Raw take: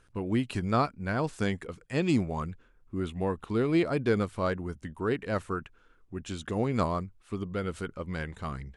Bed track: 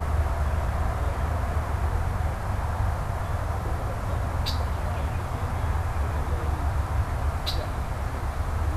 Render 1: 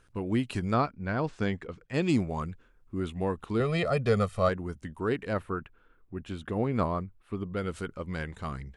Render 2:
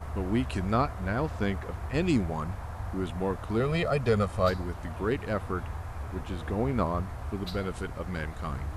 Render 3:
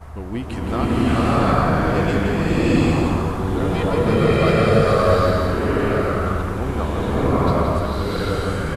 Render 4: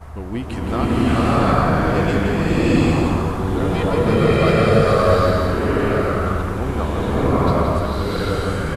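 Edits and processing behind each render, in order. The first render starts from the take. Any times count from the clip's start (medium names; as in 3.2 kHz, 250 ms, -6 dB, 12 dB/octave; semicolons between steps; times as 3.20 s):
0.74–1.94 s: distance through air 120 m; 3.60–4.49 s: comb 1.6 ms, depth 94%; 5.33–7.57 s: peaking EQ 6.6 kHz -14.5 dB 1.3 oct
add bed track -10.5 dB
delay 168 ms -6.5 dB; swelling reverb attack 770 ms, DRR -10.5 dB
trim +1 dB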